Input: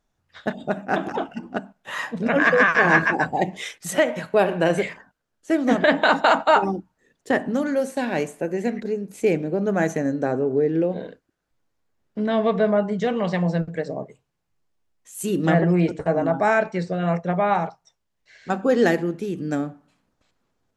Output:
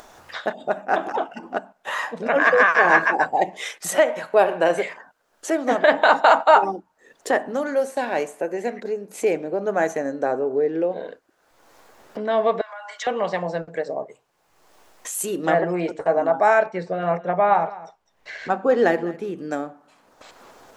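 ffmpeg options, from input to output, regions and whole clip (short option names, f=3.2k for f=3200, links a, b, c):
-filter_complex "[0:a]asettb=1/sr,asplit=3[a][b][c];[a]atrim=end=12.614[d];[b]atrim=start=12.61:end=13.07,asetpts=PTS-STARTPTS,afade=t=in:d=0.004:c=qsin,afade=t=out:st=0.456:d=0.004:c=qsin,highpass=f=1.1k:w=0.5412,highpass=f=1.1k:w=1.3066,aecho=1:1:3.6:0.56,atrim=end_sample=20286,acompressor=threshold=-38dB:ratio=5:attack=3.2:release=140:knee=1:detection=peak[e];[c]atrim=start=13.066[f];[d][e]acrossfade=d=0.004:c1=hsin:c2=qsin[g];[g][f]acrossfade=d=0.004:c1=qsin:c2=hsin,asettb=1/sr,asplit=3[h][i][j];[h]atrim=end=16.664[k];[i]atrim=start=16.66:end=19.39,asetpts=PTS-STARTPTS,afade=t=in:d=0.004:c=qsin,afade=t=out:st=2.726:d=0.004:c=qsin,bass=f=250:g=6,treble=f=4k:g=-8,aecho=1:1:206:0.112,atrim=end_sample=120393[l];[j]atrim=start=19.386[m];[k][l]acrossfade=d=0.004:c1=hsin:c2=qsin[n];[n][m]acrossfade=d=0.004:c1=qsin:c2=hsin,equalizer=f=810:w=0.54:g=8,acompressor=mode=upward:threshold=-18dB:ratio=2.5,bass=f=250:g=-12,treble=f=4k:g=3,volume=-4dB"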